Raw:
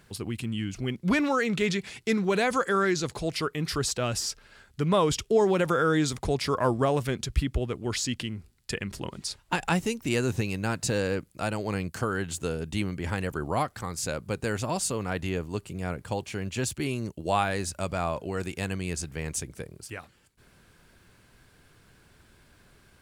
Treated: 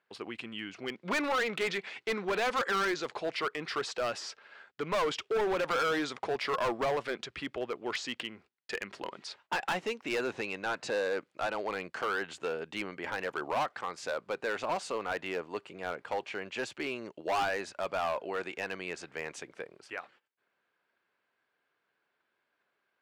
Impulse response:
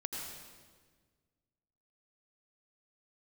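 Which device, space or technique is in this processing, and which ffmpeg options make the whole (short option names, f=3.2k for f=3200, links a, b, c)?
walkie-talkie: -filter_complex "[0:a]highpass=520,lowpass=2.7k,asoftclip=type=hard:threshold=-29dB,agate=range=-18dB:threshold=-60dB:ratio=16:detection=peak,asettb=1/sr,asplit=3[a][b][c];[a]atrim=end=10.334[d];[b]atrim=start=10.33:end=11.7,asetpts=PTS-STARTPTS,afade=t=in:d=0.004:c=qsin,afade=t=out:st=1.366:d=0.004:c=qsin,lowpass=12k[e];[c]atrim=start=11.696[f];[d][e]acrossfade=d=0.004:c1=hsin:c2=qsin[g];[g][f]acrossfade=d=0.004:c1=qsin:c2=hsin,volume=2.5dB"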